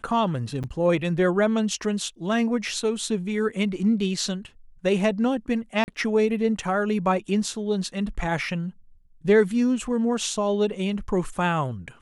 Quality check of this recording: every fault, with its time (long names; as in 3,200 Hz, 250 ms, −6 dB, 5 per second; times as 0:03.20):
0:00.63–0:00.64: drop-out 7.5 ms
0:05.84–0:05.88: drop-out 39 ms